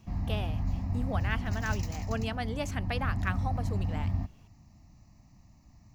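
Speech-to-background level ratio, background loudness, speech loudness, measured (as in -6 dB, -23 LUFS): -3.0 dB, -34.0 LUFS, -37.0 LUFS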